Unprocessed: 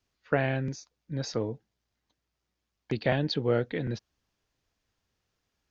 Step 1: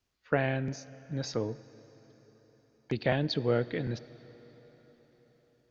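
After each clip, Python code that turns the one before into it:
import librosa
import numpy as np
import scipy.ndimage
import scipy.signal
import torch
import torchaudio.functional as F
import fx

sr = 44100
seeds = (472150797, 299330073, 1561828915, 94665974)

y = fx.rev_plate(x, sr, seeds[0], rt60_s=4.8, hf_ratio=0.9, predelay_ms=0, drr_db=17.5)
y = y * 10.0 ** (-1.5 / 20.0)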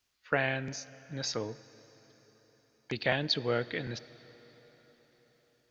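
y = fx.tilt_shelf(x, sr, db=-6.0, hz=850.0)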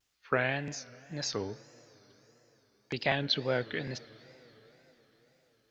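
y = fx.wow_flutter(x, sr, seeds[1], rate_hz=2.1, depth_cents=150.0)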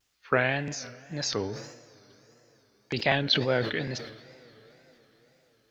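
y = fx.sustainer(x, sr, db_per_s=64.0)
y = y * 10.0 ** (4.0 / 20.0)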